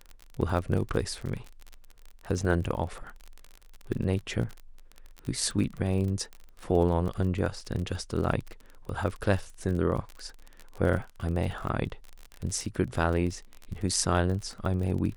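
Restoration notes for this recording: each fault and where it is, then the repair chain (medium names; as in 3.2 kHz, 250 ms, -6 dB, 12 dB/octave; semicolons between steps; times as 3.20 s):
crackle 34 per s -33 dBFS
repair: de-click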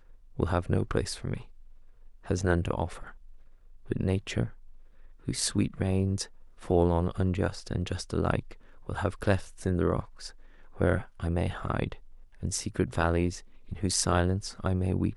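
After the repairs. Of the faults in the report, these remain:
nothing left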